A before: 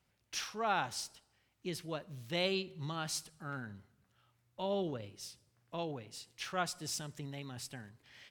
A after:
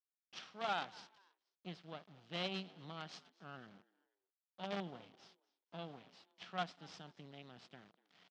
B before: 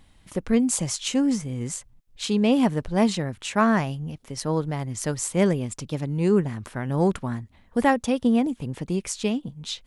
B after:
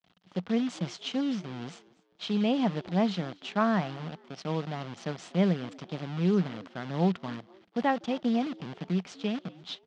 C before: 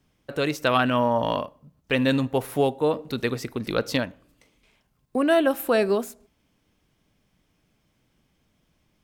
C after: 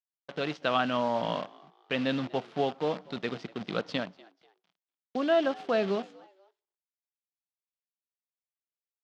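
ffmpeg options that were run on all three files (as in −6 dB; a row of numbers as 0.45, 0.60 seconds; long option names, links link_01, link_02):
-filter_complex "[0:a]acrusher=bits=6:dc=4:mix=0:aa=0.000001,highpass=150,equalizer=frequency=180:width_type=q:width=4:gain=10,equalizer=frequency=710:width_type=q:width=4:gain=6,equalizer=frequency=1300:width_type=q:width=4:gain=3,equalizer=frequency=3200:width_type=q:width=4:gain=5,lowpass=frequency=4900:width=0.5412,lowpass=frequency=4900:width=1.3066,asplit=3[link_01][link_02][link_03];[link_02]adelay=243,afreqshift=94,volume=-23.5dB[link_04];[link_03]adelay=486,afreqshift=188,volume=-33.1dB[link_05];[link_01][link_04][link_05]amix=inputs=3:normalize=0,volume=-8.5dB"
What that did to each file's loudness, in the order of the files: −7.0, −6.0, −6.5 LU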